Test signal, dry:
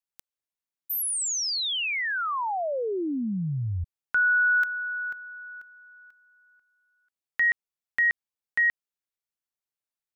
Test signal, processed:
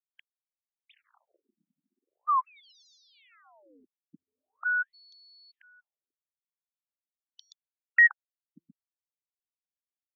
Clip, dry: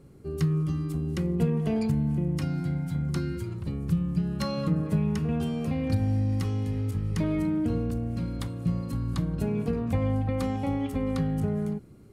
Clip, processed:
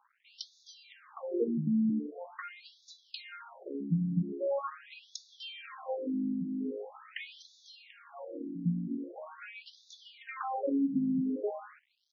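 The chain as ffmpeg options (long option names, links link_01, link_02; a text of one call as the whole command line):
ffmpeg -i in.wav -filter_complex "[0:a]acontrast=48,aeval=exprs='sgn(val(0))*max(abs(val(0))-0.00501,0)':channel_layout=same,acrossover=split=290|4900[link_01][link_02][link_03];[link_01]acompressor=threshold=-43dB:ratio=1.5:release=452:knee=2.83:detection=peak[link_04];[link_04][link_02][link_03]amix=inputs=3:normalize=0,afftfilt=real='re*between(b*sr/1024,210*pow(4900/210,0.5+0.5*sin(2*PI*0.43*pts/sr))/1.41,210*pow(4900/210,0.5+0.5*sin(2*PI*0.43*pts/sr))*1.41)':imag='im*between(b*sr/1024,210*pow(4900/210,0.5+0.5*sin(2*PI*0.43*pts/sr))/1.41,210*pow(4900/210,0.5+0.5*sin(2*PI*0.43*pts/sr))*1.41)':win_size=1024:overlap=0.75" out.wav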